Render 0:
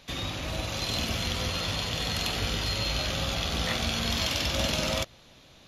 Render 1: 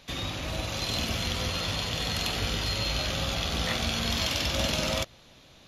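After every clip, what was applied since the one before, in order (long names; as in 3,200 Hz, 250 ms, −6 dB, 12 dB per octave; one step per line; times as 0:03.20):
no processing that can be heard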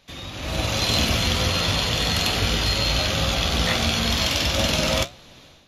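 automatic gain control gain up to 14 dB
flanger 1.3 Hz, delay 8.9 ms, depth 7.8 ms, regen −62%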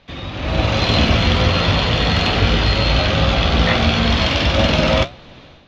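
high-frequency loss of the air 240 metres
level +8.5 dB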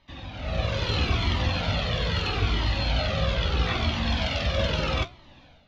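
flanger whose copies keep moving one way falling 0.77 Hz
level −6.5 dB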